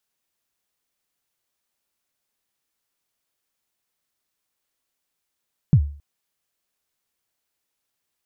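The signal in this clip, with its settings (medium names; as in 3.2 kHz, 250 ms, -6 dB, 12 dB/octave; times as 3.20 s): kick drum length 0.27 s, from 170 Hz, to 72 Hz, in 72 ms, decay 0.43 s, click off, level -7 dB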